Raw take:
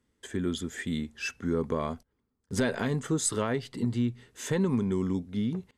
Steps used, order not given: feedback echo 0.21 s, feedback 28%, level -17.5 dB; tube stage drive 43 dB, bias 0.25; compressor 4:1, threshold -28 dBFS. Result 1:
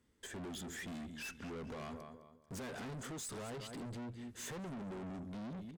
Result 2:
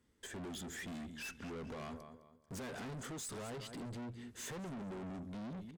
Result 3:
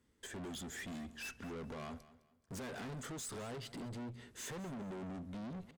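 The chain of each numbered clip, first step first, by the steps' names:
feedback echo > compressor > tube stage; compressor > feedback echo > tube stage; compressor > tube stage > feedback echo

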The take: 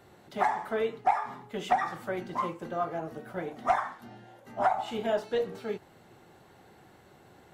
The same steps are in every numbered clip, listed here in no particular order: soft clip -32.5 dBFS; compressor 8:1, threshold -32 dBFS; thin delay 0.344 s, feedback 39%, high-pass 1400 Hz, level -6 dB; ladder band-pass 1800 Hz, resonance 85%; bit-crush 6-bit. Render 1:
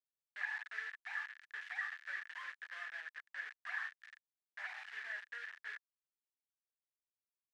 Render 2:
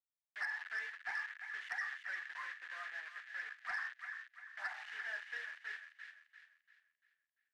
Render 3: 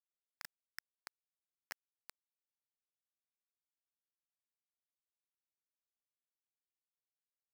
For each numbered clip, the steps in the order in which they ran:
soft clip > thin delay > bit-crush > ladder band-pass > compressor; bit-crush > ladder band-pass > compressor > thin delay > soft clip; compressor > ladder band-pass > soft clip > thin delay > bit-crush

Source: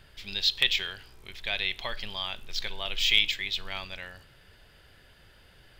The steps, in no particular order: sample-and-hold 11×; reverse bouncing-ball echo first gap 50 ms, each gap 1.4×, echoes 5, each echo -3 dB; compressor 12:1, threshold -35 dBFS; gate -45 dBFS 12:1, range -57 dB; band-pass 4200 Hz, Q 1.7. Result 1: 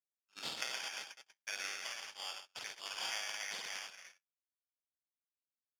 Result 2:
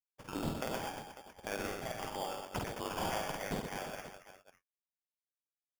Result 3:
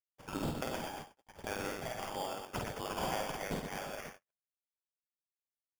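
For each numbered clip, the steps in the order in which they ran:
reverse bouncing-ball echo > sample-and-hold > band-pass > gate > compressor; band-pass > gate > compressor > reverse bouncing-ball echo > sample-and-hold; band-pass > sample-and-hold > compressor > reverse bouncing-ball echo > gate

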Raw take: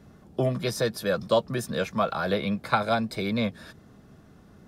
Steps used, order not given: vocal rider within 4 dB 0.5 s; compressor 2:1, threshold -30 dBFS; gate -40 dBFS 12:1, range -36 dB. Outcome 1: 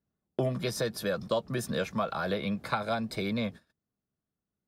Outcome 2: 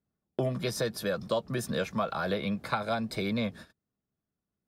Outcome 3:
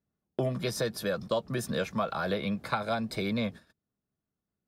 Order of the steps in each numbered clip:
compressor > vocal rider > gate; vocal rider > gate > compressor; vocal rider > compressor > gate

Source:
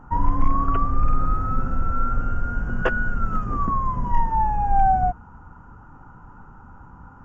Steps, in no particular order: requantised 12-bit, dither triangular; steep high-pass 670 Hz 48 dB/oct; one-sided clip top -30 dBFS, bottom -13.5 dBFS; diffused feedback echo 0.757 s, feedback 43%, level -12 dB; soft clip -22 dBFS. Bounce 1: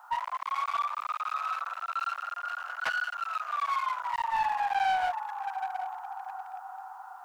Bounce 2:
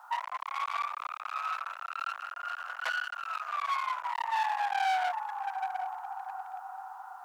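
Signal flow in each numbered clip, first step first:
diffused feedback echo > one-sided clip > requantised > steep high-pass > soft clip; diffused feedback echo > soft clip > requantised > one-sided clip > steep high-pass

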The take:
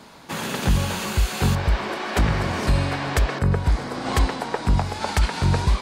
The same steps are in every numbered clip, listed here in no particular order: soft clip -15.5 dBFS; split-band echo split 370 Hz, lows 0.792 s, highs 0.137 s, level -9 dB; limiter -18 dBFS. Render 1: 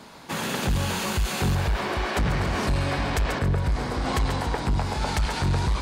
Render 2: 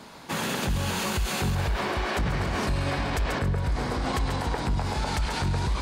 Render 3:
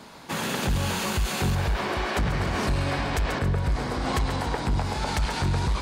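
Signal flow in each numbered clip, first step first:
split-band echo > soft clip > limiter; split-band echo > limiter > soft clip; soft clip > split-band echo > limiter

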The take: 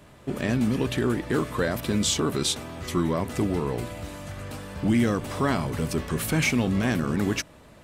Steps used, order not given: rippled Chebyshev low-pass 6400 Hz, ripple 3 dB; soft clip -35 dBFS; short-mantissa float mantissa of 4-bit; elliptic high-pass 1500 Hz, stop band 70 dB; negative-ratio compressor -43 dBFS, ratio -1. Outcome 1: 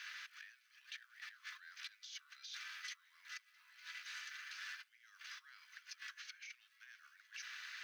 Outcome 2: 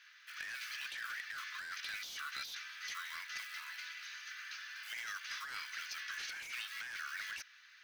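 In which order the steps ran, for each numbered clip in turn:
negative-ratio compressor > rippled Chebyshev low-pass > soft clip > short-mantissa float > elliptic high-pass; rippled Chebyshev low-pass > short-mantissa float > elliptic high-pass > soft clip > negative-ratio compressor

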